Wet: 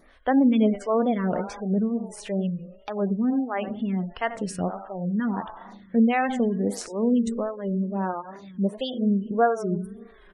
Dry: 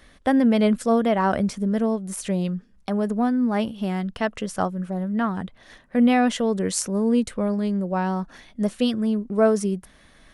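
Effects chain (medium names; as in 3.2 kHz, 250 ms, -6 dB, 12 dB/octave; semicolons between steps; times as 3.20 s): 8.13–8.77 s: high-pass 63 Hz 12 dB/octave; feedback delay 91 ms, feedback 53%, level -13.5 dB; spring tank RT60 1.9 s, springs 37 ms, chirp 60 ms, DRR 13 dB; wow and flutter 110 cents; spectral gate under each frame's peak -30 dB strong; 5.07–6.00 s: peaking EQ 900 Hz +7 dB 0.56 oct; lamp-driven phase shifter 1.5 Hz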